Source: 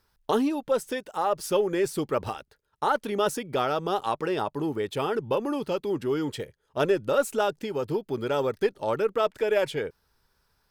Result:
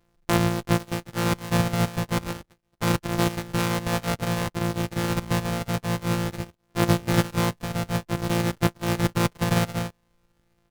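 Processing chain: sample sorter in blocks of 256 samples; harmoniser -7 st -3 dB, -5 st -18 dB

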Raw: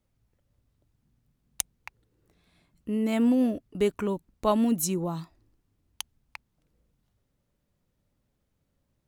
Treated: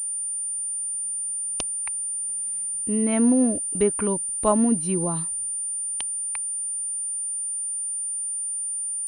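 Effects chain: treble ducked by the level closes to 1800 Hz, closed at -20 dBFS; pulse-width modulation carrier 9200 Hz; gain +3.5 dB

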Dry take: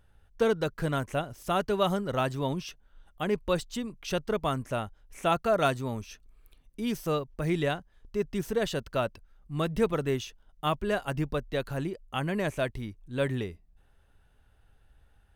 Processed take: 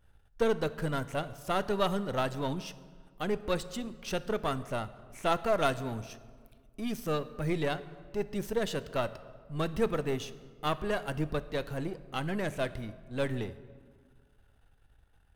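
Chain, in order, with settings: half-wave gain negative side -7 dB; reverb RT60 1.7 s, pre-delay 4 ms, DRR 13.5 dB

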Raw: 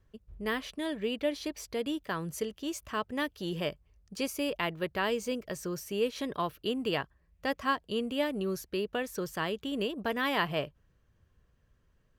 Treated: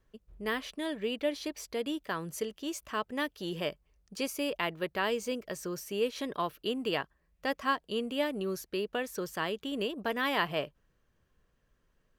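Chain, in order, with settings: bell 83 Hz -11 dB 1.5 oct

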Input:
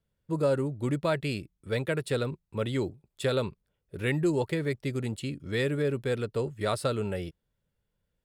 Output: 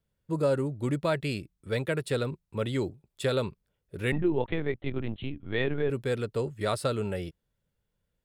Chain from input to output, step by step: 4.12–5.9 LPC vocoder at 8 kHz pitch kept

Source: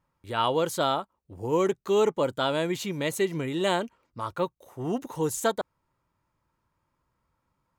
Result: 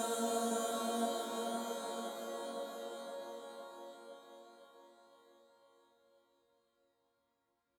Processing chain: HPF 65 Hz; resonator bank A#3 minor, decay 0.49 s; Paulstretch 13×, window 0.50 s, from 5.51; on a send: feedback echo 0.514 s, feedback 56%, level -8 dB; on the sum: gain +11.5 dB

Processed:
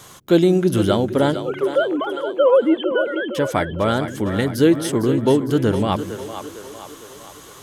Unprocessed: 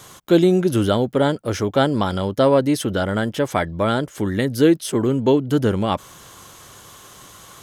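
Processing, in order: 1.42–3.35 sine-wave speech; split-band echo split 320 Hz, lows 0.153 s, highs 0.456 s, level -10 dB

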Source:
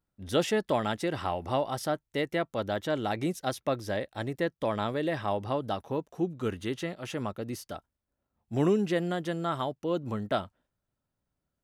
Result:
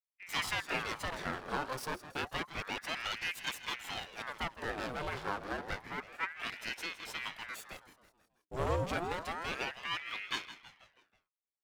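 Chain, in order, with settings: minimum comb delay 0.98 ms; gate with hold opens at -42 dBFS; low shelf 140 Hz -10 dB; feedback echo 0.162 s, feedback 51%, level -13.5 dB; ring modulator with a swept carrier 1300 Hz, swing 80%, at 0.29 Hz

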